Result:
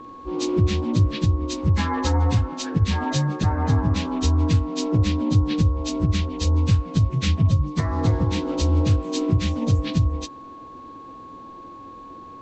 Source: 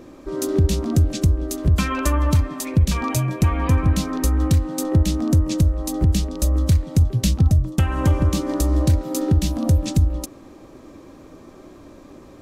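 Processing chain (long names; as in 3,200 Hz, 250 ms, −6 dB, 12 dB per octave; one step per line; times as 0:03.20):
partials spread apart or drawn together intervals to 84%
steady tone 1,100 Hz −39 dBFS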